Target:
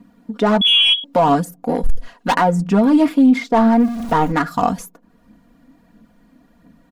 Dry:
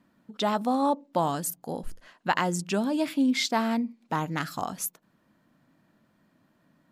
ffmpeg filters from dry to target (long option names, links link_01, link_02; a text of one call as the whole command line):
ffmpeg -i in.wav -filter_complex "[0:a]asettb=1/sr,asplit=3[link_01][link_02][link_03];[link_01]atrim=end=3.534[link_04];[link_02]atrim=start=3.53:end=4.32,asetpts=PTS-STARTPTS,afade=type=in:duration=0.004:curve=qsin,afade=type=out:start_time=0.786:duration=0.004:curve=qsin,aeval=exprs='val(0)+0.5*0.0119*sgn(val(0))':channel_layout=same[link_05];[link_03]atrim=start=4.316[link_06];[link_04][link_05]acrossfade=duration=0.004:curve1=hsin:curve2=qsin[link_07];[link_07][link_06]acrossfade=duration=0.004:curve1=qsin:curve2=hsin,asubboost=boost=2.5:cutoff=84,acrossover=split=1700[link_08][link_09];[link_09]acompressor=threshold=-45dB:ratio=12[link_10];[link_08][link_10]amix=inputs=2:normalize=0,aphaser=in_gain=1:out_gain=1:delay=3.9:decay=0.38:speed=1.5:type=triangular,asplit=2[link_11][link_12];[link_12]adynamicsmooth=sensitivity=6:basefreq=840,volume=1.5dB[link_13];[link_11][link_13]amix=inputs=2:normalize=0,asettb=1/sr,asplit=3[link_14][link_15][link_16];[link_14]atrim=end=0.614[link_17];[link_15]atrim=start=0.61:end=1.04,asetpts=PTS-STARTPTS,afade=type=in:duration=0.004:curve=qsin,afade=type=out:start_time=0.426:duration=0.004:curve=qsin,lowpass=frequency=3100:width_type=q:width=0.5098,lowpass=frequency=3100:width_type=q:width=0.6013,lowpass=frequency=3100:width_type=q:width=0.9,lowpass=frequency=3100:width_type=q:width=2.563,afreqshift=-3600[link_18];[link_16]atrim=start=1.036[link_19];[link_17][link_18]acrossfade=duration=0.004:curve1=hsin:curve2=qsin[link_20];[link_20][link_19]acrossfade=duration=0.004:curve1=qsin:curve2=hsin,asettb=1/sr,asplit=3[link_21][link_22][link_23];[link_21]atrim=end=1.744[link_24];[link_22]atrim=start=1.74:end=2.36,asetpts=PTS-STARTPTS,afade=type=in:duration=0.004:curve=qsin,afade=type=out:start_time=0.616:duration=0.004:curve=qsin,volume=19dB,asoftclip=hard,volume=-19dB[link_25];[link_23]atrim=start=2.356[link_26];[link_24][link_25]acrossfade=duration=0.004:curve1=hsin:curve2=qsin[link_27];[link_27][link_26]acrossfade=duration=0.004:curve1=qsin:curve2=hsin,aeval=exprs='0.562*(cos(1*acos(clip(val(0)/0.562,-1,1)))-cos(1*PI/2))+0.0141*(cos(2*acos(clip(val(0)/0.562,-1,1)))-cos(2*PI/2))+0.0158*(cos(5*acos(clip(val(0)/0.562,-1,1)))-cos(5*PI/2))':channel_layout=same,aecho=1:1:4.2:0.73,alimiter=level_in=10.5dB:limit=-1dB:release=50:level=0:latency=1,volume=-5dB" out.wav